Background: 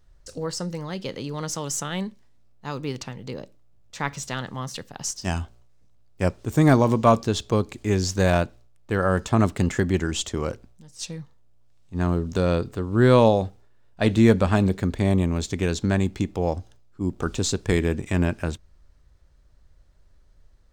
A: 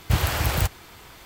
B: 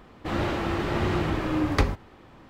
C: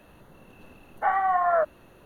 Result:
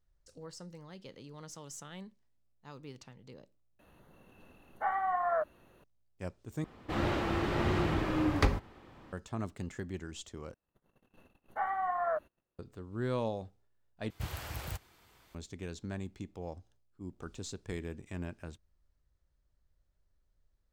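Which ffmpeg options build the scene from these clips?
ffmpeg -i bed.wav -i cue0.wav -i cue1.wav -i cue2.wav -filter_complex "[3:a]asplit=2[link_01][link_02];[0:a]volume=-18dB[link_03];[link_02]agate=range=-27dB:threshold=-50dB:ratio=16:release=100:detection=peak[link_04];[link_03]asplit=5[link_05][link_06][link_07][link_08][link_09];[link_05]atrim=end=3.794[link_10];[link_01]atrim=end=2.05,asetpts=PTS-STARTPTS,volume=-8.5dB[link_11];[link_06]atrim=start=5.836:end=6.644[link_12];[2:a]atrim=end=2.49,asetpts=PTS-STARTPTS,volume=-4.5dB[link_13];[link_07]atrim=start=9.126:end=10.544[link_14];[link_04]atrim=end=2.05,asetpts=PTS-STARTPTS,volume=-10dB[link_15];[link_08]atrim=start=12.586:end=14.104[link_16];[1:a]atrim=end=1.25,asetpts=PTS-STARTPTS,volume=-17.5dB[link_17];[link_09]atrim=start=15.346[link_18];[link_10][link_11]acrossfade=duration=0.004:curve1=hsin:curve2=hsin[link_19];[link_19][link_12]acrossfade=duration=0.004:curve1=hsin:curve2=hsin[link_20];[link_20][link_13]acrossfade=duration=0.004:curve1=hsin:curve2=hsin[link_21];[link_21][link_14]acrossfade=duration=0.004:curve1=hsin:curve2=hsin[link_22];[link_22][link_15]acrossfade=duration=0.004:curve1=hsin:curve2=hsin[link_23];[link_23][link_16]acrossfade=duration=0.004:curve1=hsin:curve2=hsin[link_24];[link_24][link_17]acrossfade=duration=0.004:curve1=hsin:curve2=hsin[link_25];[link_25][link_18]acrossfade=duration=0.004:curve1=hsin:curve2=hsin" out.wav

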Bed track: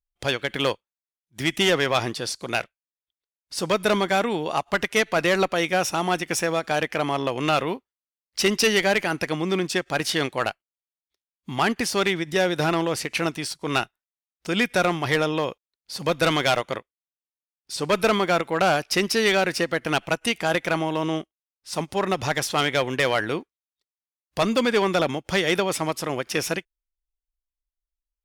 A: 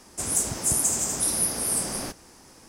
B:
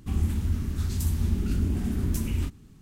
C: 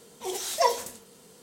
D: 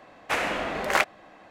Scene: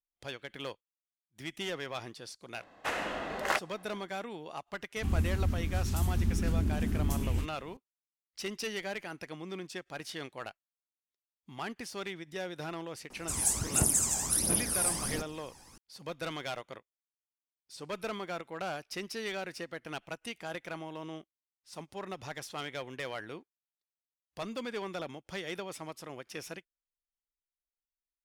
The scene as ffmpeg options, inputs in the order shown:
ffmpeg -i bed.wav -i cue0.wav -i cue1.wav -i cue2.wav -i cue3.wav -filter_complex "[0:a]volume=-17dB[link_01];[4:a]bandreject=frequency=2300:width=9.3[link_02];[1:a]aphaser=in_gain=1:out_gain=1:delay=1.3:decay=0.63:speed=1.4:type=triangular[link_03];[link_02]atrim=end=1.5,asetpts=PTS-STARTPTS,volume=-7dB,afade=type=in:duration=0.004:curve=hsin,afade=type=out:start_time=1.496:duration=0.004:curve=hsin,adelay=2550[link_04];[2:a]atrim=end=2.81,asetpts=PTS-STARTPTS,volume=-3.5dB,afade=type=in:duration=0.004:curve=hsin,afade=type=out:start_time=2.806:duration=0.004:curve=hsin,adelay=4960[link_05];[link_03]atrim=end=2.68,asetpts=PTS-STARTPTS,volume=-6.5dB,afade=type=in:duration=0.004:curve=hsin,afade=type=out:start_time=2.676:duration=0.004:curve=hsin,adelay=13100[link_06];[link_01][link_04][link_05][link_06]amix=inputs=4:normalize=0" out.wav

